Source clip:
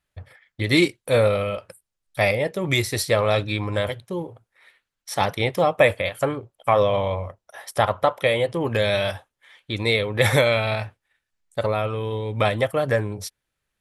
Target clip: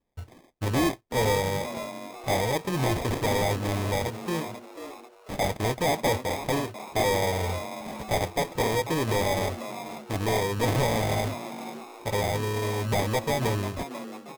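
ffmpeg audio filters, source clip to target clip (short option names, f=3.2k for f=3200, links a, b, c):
-filter_complex "[0:a]bandreject=f=570:w=12,acrusher=samples=30:mix=1:aa=0.000001,asoftclip=type=tanh:threshold=-20dB,asplit=2[a][b];[b]asplit=4[c][d][e][f];[c]adelay=472,afreqshift=130,volume=-11.5dB[g];[d]adelay=944,afreqshift=260,volume=-19.7dB[h];[e]adelay=1416,afreqshift=390,volume=-27.9dB[i];[f]adelay=1888,afreqshift=520,volume=-36dB[j];[g][h][i][j]amix=inputs=4:normalize=0[k];[a][k]amix=inputs=2:normalize=0,asetrate=42336,aresample=44100"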